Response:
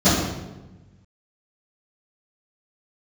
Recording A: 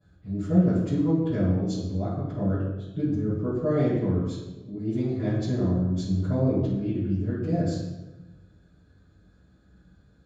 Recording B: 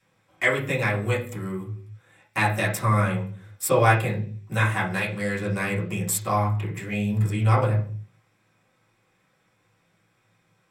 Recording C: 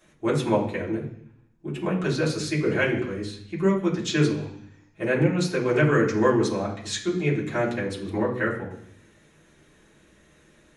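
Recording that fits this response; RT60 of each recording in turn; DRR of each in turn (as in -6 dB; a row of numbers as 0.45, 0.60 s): A; 1.1 s, not exponential, 0.65 s; -18.0, -7.0, -7.5 dB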